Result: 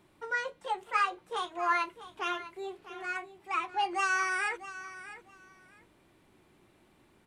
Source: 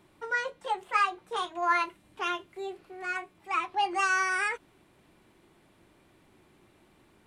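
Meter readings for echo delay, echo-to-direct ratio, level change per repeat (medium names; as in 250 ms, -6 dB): 650 ms, -14.5 dB, -14.0 dB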